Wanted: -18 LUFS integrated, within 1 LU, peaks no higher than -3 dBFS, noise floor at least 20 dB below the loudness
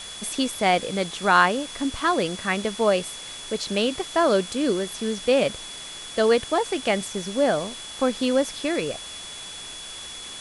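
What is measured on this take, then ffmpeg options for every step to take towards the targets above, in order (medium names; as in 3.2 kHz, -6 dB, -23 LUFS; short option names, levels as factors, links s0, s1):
steady tone 3.4 kHz; tone level -38 dBFS; noise floor -38 dBFS; noise floor target -44 dBFS; loudness -23.5 LUFS; peak level -5.0 dBFS; loudness target -18.0 LUFS
-> -af "bandreject=f=3400:w=30"
-af "afftdn=nr=6:nf=-38"
-af "volume=1.88,alimiter=limit=0.708:level=0:latency=1"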